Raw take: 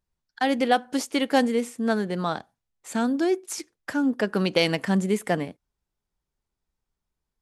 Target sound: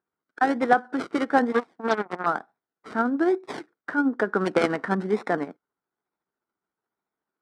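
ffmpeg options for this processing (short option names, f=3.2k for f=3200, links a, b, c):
-filter_complex "[0:a]tremolo=f=14:d=0.38,acrossover=split=2000[a][b];[b]acrusher=samples=40:mix=1:aa=0.000001:lfo=1:lforange=24:lforate=1.1[c];[a][c]amix=inputs=2:normalize=0,asettb=1/sr,asplit=3[d][e][f];[d]atrim=end=1.524[g];[e]atrim=start=1.52:end=2.26,asetpts=PTS-STARTPTS,afade=t=in:d=0.004:c=qsin,afade=t=out:st=0.736:d=0.004:c=qsin,aeval=exprs='0.224*(cos(1*acos(clip(val(0)/0.224,-1,1)))-cos(1*PI/2))+0.0355*(cos(7*acos(clip(val(0)/0.224,-1,1)))-cos(7*PI/2))':c=same[h];[f]atrim=start=2.256[i];[g][h]acrossfade=d=0.004:c1=hsin:c2=qsin[j];[j][i]acrossfade=d=0.004:c1=qsin:c2=hsin,highpass=300,equalizer=f=560:t=q:w=4:g=-6,equalizer=f=1.4k:t=q:w=4:g=7,equalizer=f=2.7k:t=q:w=4:g=-5,equalizer=f=6.8k:t=q:w=4:g=-8,lowpass=f=8.2k:w=0.5412,lowpass=f=8.2k:w=1.3066,volume=5dB"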